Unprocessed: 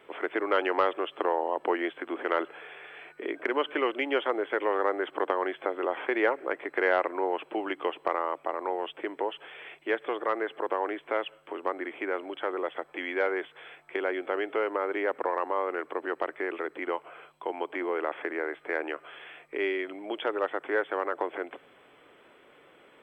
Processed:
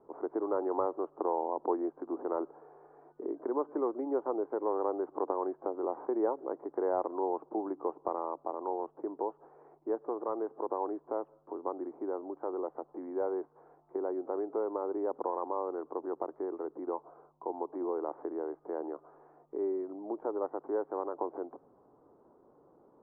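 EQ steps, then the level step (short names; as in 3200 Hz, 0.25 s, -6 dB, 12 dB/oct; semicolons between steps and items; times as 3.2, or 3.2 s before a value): steep low-pass 970 Hz 36 dB/oct; bell 580 Hz -6 dB 0.92 oct; 0.0 dB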